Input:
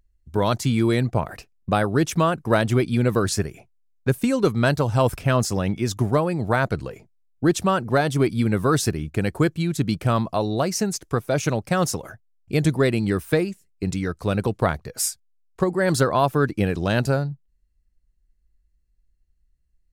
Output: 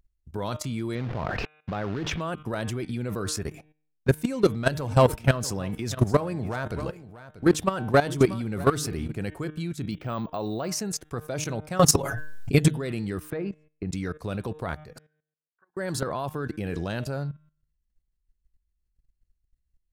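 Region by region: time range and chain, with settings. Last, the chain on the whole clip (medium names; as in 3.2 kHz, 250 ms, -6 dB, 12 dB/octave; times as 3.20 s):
0.95–2.21 s: companded quantiser 4-bit + distance through air 250 m + level flattener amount 70%
3.46–9.14 s: waveshaping leveller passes 1 + delay 638 ms -15.5 dB
9.91–10.69 s: low-pass 4.3 kHz + peaking EQ 61 Hz -7.5 dB 1.7 oct + careless resampling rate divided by 2×, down filtered, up hold
11.79–12.68 s: comb 7.2 ms, depth 91% + level flattener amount 70%
13.30–13.91 s: compression 10:1, threshold -20 dBFS + low-pass 2.2 kHz
14.98–15.77 s: compression 5:1, threshold -29 dBFS + band-pass filter 1.5 kHz, Q 16 + distance through air 380 m
whole clip: de-hum 152.9 Hz, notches 25; level held to a coarse grid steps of 15 dB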